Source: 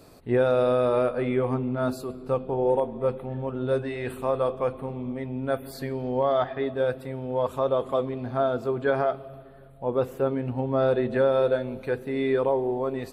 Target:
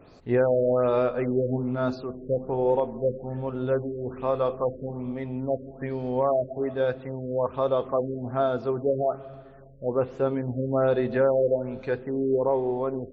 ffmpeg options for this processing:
-af "afftfilt=real='re*lt(b*sr/1024,620*pow(7900/620,0.5+0.5*sin(2*PI*1.2*pts/sr)))':imag='im*lt(b*sr/1024,620*pow(7900/620,0.5+0.5*sin(2*PI*1.2*pts/sr)))':win_size=1024:overlap=0.75"

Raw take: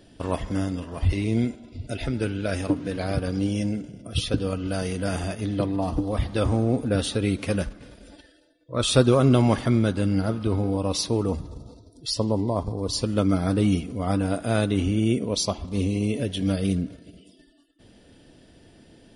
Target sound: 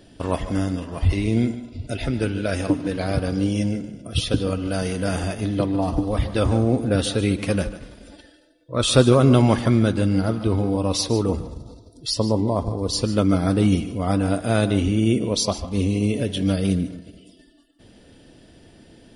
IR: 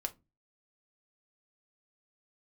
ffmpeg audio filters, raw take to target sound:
-filter_complex "[0:a]asplit=2[s0][s1];[1:a]atrim=start_sample=2205,adelay=147[s2];[s1][s2]afir=irnorm=-1:irlink=0,volume=0.211[s3];[s0][s3]amix=inputs=2:normalize=0,volume=1.41"

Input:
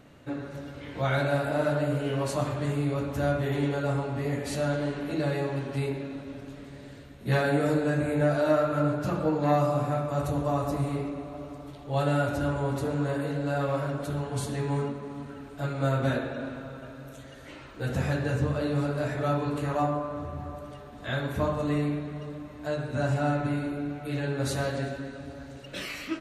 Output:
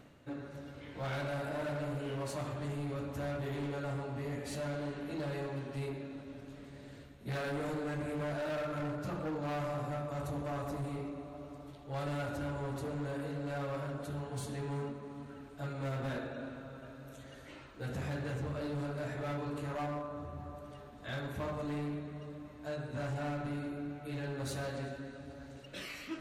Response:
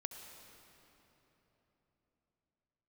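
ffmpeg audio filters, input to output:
-af "volume=20,asoftclip=hard,volume=0.0501,areverse,acompressor=mode=upward:threshold=0.0141:ratio=2.5,areverse,volume=0.398"

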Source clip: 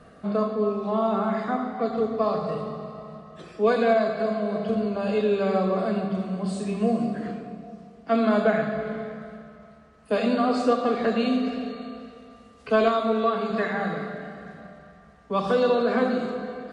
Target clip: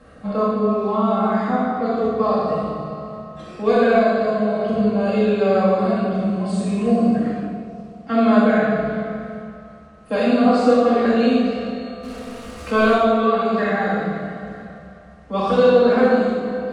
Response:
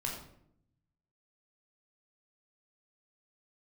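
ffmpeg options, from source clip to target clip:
-filter_complex "[0:a]asettb=1/sr,asplit=3[s0][s1][s2];[s0]atrim=end=12.034[s3];[s1]atrim=start=12.03:end=12.95,asetpts=PTS-STARTPTS,afade=t=in:d=0.004:c=qsin,afade=t=out:st=0.916:d=0.004:c=qsin,aeval=exprs='val(0)+0.5*0.0133*sgn(val(0))':c=same[s4];[s2]atrim=start=12.946[s5];[s3][s4]acrossfade=d=0.004:c1=hsin:c2=qsin[s6];[s6][s5]acrossfade=d=0.004:c1=qsin:c2=hsin[s7];[1:a]atrim=start_sample=2205,afade=t=out:st=0.31:d=0.01,atrim=end_sample=14112,asetrate=22932,aresample=44100[s8];[s7][s8]afir=irnorm=-1:irlink=0,volume=0.891"

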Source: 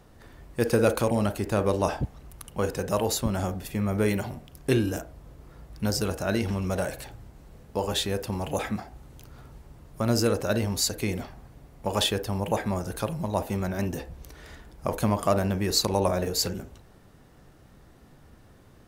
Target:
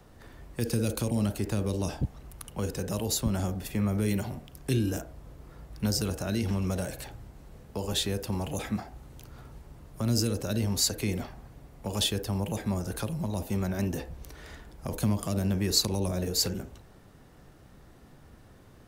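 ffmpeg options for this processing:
-filter_complex "[0:a]acrossover=split=360|3000[s0][s1][s2];[s1]acompressor=threshold=0.0158:ratio=6[s3];[s0][s3][s2]amix=inputs=3:normalize=0,acrossover=split=230|2100[s4][s5][s6];[s5]alimiter=level_in=1.26:limit=0.0631:level=0:latency=1,volume=0.794[s7];[s4][s7][s6]amix=inputs=3:normalize=0"

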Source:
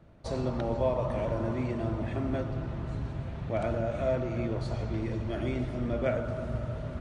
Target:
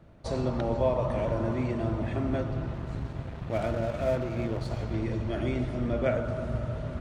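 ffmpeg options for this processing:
-filter_complex "[0:a]asettb=1/sr,asplit=3[s0][s1][s2];[s0]atrim=end=2.734[s3];[s1]atrim=start=2.73:end=4.94,asetpts=PTS-STARTPTS,afade=t=in:d=0.004:c=qsin,afade=t=out:st=2.206:d=0.004:c=qsin,aeval=exprs='sgn(val(0))*max(abs(val(0))-0.00596,0)':c=same[s4];[s2]atrim=start=4.936[s5];[s3][s4]acrossfade=d=0.004:c1=hsin:c2=qsin[s6];[s6][s5]acrossfade=d=0.004:c1=qsin:c2=hsin,volume=1.26"

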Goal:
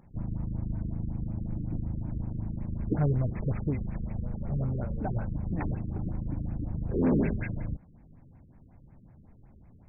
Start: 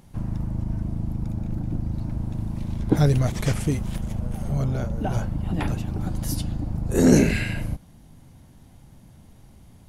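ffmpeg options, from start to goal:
-af "asoftclip=type=tanh:threshold=0.2,afftfilt=real='re*lt(b*sr/1024,470*pow(2700/470,0.5+0.5*sin(2*PI*5.4*pts/sr)))':imag='im*lt(b*sr/1024,470*pow(2700/470,0.5+0.5*sin(2*PI*5.4*pts/sr)))':win_size=1024:overlap=0.75,volume=0.562"

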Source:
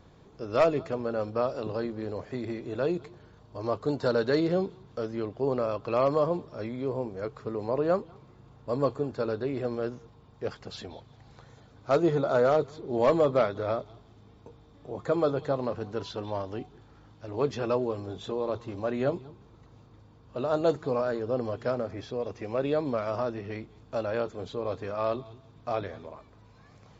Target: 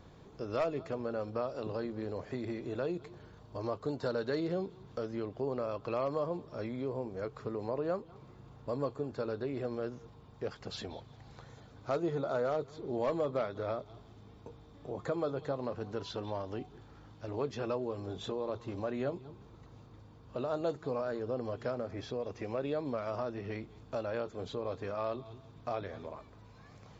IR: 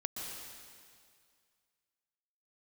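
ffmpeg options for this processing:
-af "acompressor=threshold=0.0141:ratio=2"

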